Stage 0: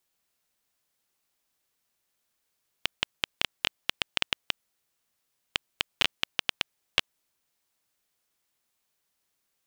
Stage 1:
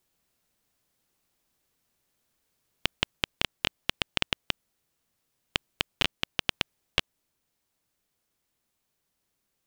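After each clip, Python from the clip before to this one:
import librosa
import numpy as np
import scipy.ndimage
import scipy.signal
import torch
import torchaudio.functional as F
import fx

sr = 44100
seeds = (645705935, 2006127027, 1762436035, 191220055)

y = fx.rider(x, sr, range_db=10, speed_s=0.5)
y = fx.low_shelf(y, sr, hz=460.0, db=9.5)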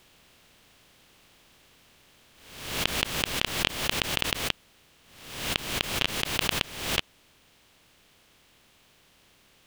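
y = fx.bin_compress(x, sr, power=0.6)
y = fx.pre_swell(y, sr, db_per_s=67.0)
y = y * librosa.db_to_amplitude(-2.0)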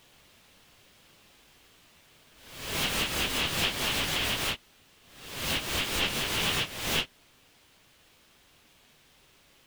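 y = fx.phase_scramble(x, sr, seeds[0], window_ms=100)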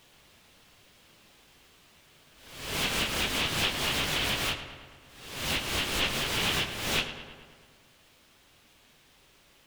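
y = fx.echo_filtered(x, sr, ms=108, feedback_pct=66, hz=4100.0, wet_db=-10.5)
y = fx.doppler_dist(y, sr, depth_ms=0.22)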